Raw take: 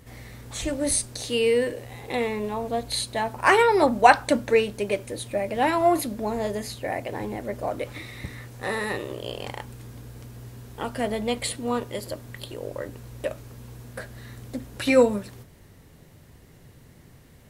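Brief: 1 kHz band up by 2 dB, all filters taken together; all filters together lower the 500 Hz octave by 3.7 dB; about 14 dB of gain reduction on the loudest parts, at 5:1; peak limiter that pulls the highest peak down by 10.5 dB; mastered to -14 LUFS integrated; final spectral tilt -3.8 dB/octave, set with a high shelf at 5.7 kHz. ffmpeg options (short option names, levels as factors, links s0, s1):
-af "equalizer=f=500:t=o:g=-6,equalizer=f=1000:t=o:g=5,highshelf=f=5700:g=6,acompressor=threshold=0.0631:ratio=5,volume=10,alimiter=limit=0.75:level=0:latency=1"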